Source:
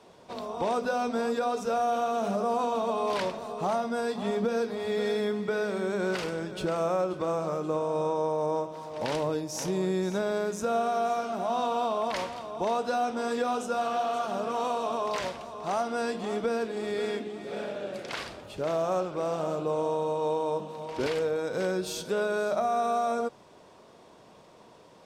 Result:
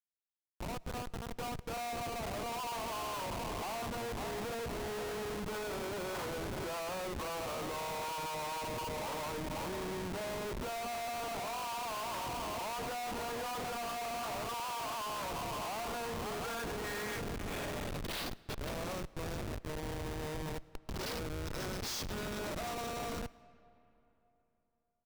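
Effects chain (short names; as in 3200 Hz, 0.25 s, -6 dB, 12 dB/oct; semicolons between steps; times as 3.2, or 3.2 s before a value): opening faded in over 5.83 s; band-pass sweep 1000 Hz -> 5300 Hz, 16.01–18.58; echo 0.723 s -14.5 dB; in parallel at +1 dB: compressor 12:1, threshold -57 dBFS, peak gain reduction 27 dB; on the sum: Schmitt trigger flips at -45 dBFS; on a send at -21 dB: reverb RT60 3.4 s, pre-delay 65 ms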